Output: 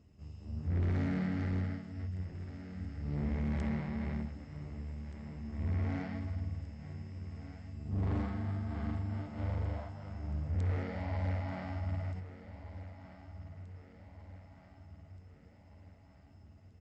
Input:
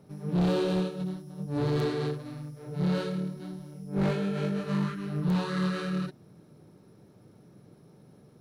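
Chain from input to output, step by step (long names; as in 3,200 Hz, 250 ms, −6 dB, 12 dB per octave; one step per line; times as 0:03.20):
repeating echo 763 ms, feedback 53%, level −13.5 dB
wrong playback speed 15 ips tape played at 7.5 ips
level −6.5 dB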